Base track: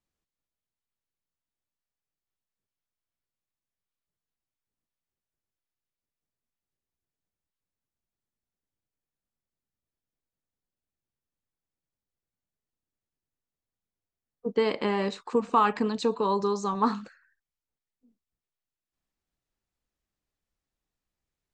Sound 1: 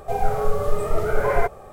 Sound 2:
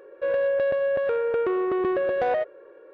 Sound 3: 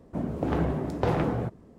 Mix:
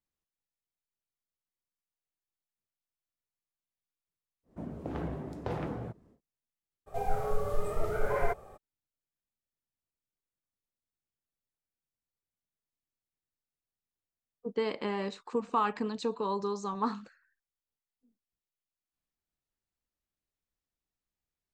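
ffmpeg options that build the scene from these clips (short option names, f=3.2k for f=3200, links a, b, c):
-filter_complex "[0:a]volume=-6.5dB[a];[3:a]atrim=end=1.78,asetpts=PTS-STARTPTS,volume=-10dB,afade=t=in:d=0.1,afade=t=out:st=1.68:d=0.1,adelay=4430[b];[1:a]atrim=end=1.72,asetpts=PTS-STARTPTS,volume=-9.5dB,afade=t=in:d=0.02,afade=t=out:st=1.7:d=0.02,adelay=6860[c];[a][b][c]amix=inputs=3:normalize=0"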